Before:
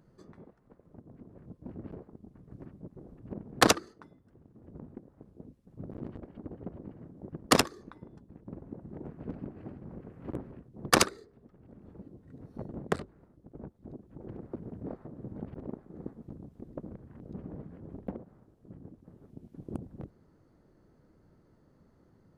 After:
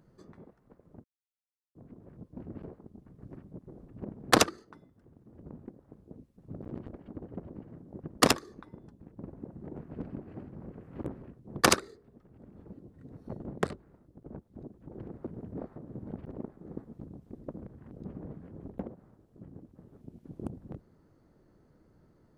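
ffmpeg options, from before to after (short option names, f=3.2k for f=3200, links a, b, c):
-filter_complex "[0:a]asplit=2[a][b];[a]atrim=end=1.04,asetpts=PTS-STARTPTS,afade=t=out:st=1.036:d=0.004:c=hsin,apad=pad_dur=0.71[c];[b]atrim=start=1.04,asetpts=PTS-STARTPTS,afade=t=in:d=0.004:c=hsin[d];[c][d]concat=n=2:v=0:a=1"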